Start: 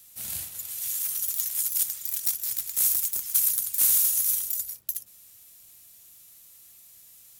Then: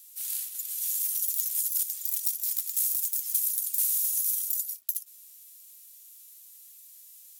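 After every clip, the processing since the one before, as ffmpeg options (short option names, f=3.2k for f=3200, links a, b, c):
-af "highshelf=f=6.8k:g=-9.5,acompressor=threshold=-32dB:ratio=6,aderivative,volume=5.5dB"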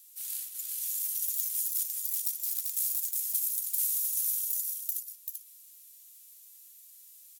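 -af "aecho=1:1:389:0.596,volume=-4dB"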